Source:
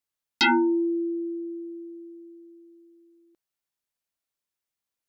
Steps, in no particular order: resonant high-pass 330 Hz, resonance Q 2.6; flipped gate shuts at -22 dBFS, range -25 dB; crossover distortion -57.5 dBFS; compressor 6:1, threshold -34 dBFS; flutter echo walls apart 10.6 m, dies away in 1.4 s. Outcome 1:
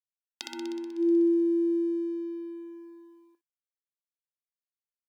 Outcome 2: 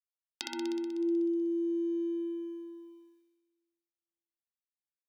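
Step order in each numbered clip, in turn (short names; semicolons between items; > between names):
flipped gate > compressor > flutter echo > crossover distortion > resonant high-pass; crossover distortion > flipped gate > resonant high-pass > compressor > flutter echo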